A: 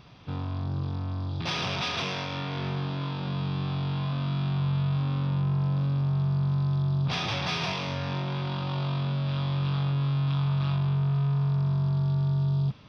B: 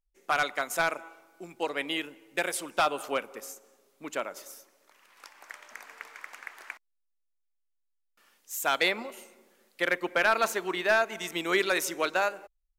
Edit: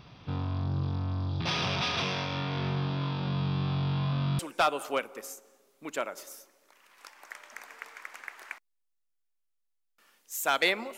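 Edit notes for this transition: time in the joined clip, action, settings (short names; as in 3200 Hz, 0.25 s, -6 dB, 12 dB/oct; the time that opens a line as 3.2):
A
4.39 switch to B from 2.58 s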